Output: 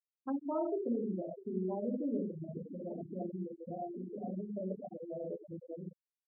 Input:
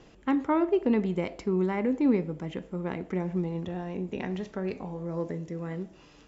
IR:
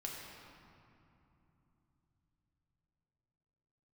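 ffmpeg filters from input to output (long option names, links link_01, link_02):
-filter_complex "[0:a]asettb=1/sr,asplit=3[link_01][link_02][link_03];[link_01]atrim=end=3.024[link_04];[link_02]atrim=start=3.02:end=5.28,asetpts=PTS-STARTPTS,afade=type=in:duration=0.004:curve=qsin,afade=type=out:start_time=2.256:duration=0.004:curve=qsin,asplit=2[link_05][link_06];[link_06]adelay=20,volume=-8dB[link_07];[link_05][link_07]amix=inputs=2:normalize=0,atrim=end_sample=99666[link_08];[link_03]atrim=start=5.276[link_09];[link_04][link_08]acrossfade=duration=0.004:curve1=hsin:curve2=qsin[link_10];[link_10][link_09]acrossfade=duration=0.004:curve1=qsin:curve2=hsin,acompressor=threshold=-46dB:ratio=2,equalizer=frequency=100:width_type=o:width=0.67:gain=3,equalizer=frequency=630:width_type=o:width=0.67:gain=10,equalizer=frequency=1600:width_type=o:width=0.67:gain=11,tremolo=f=160:d=0.261[link_11];[1:a]atrim=start_sample=2205,afade=type=out:start_time=0.29:duration=0.01,atrim=end_sample=13230,asetrate=66150,aresample=44100[link_12];[link_11][link_12]afir=irnorm=-1:irlink=0,adynamicsmooth=sensitivity=4.5:basefreq=1500,aecho=1:1:651:0.211,afftfilt=real='re*gte(hypot(re,im),0.0224)':imag='im*gte(hypot(re,im),0.0224)':win_size=1024:overlap=0.75,volume=6.5dB"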